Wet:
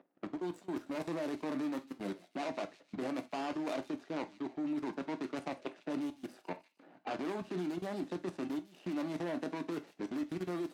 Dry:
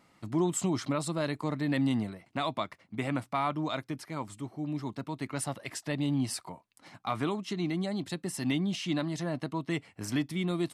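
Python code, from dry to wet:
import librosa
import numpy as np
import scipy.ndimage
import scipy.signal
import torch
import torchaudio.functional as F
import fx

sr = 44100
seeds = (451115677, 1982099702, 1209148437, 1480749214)

p1 = scipy.signal.medfilt(x, 41)
p2 = fx.env_lowpass(p1, sr, base_hz=2200.0, full_db=-28.5)
p3 = fx.over_compress(p2, sr, threshold_db=-36.0, ratio=-1.0)
p4 = scipy.signal.sosfilt(scipy.signal.bessel(6, 340.0, 'highpass', norm='mag', fs=sr, output='sos'), p3)
p5 = fx.level_steps(p4, sr, step_db=23)
p6 = p5 + fx.echo_wet_highpass(p5, sr, ms=152, feedback_pct=46, hz=3300.0, wet_db=-11.5, dry=0)
p7 = fx.rev_gated(p6, sr, seeds[0], gate_ms=100, shape='falling', drr_db=9.0)
y = p7 * librosa.db_to_amplitude(8.5)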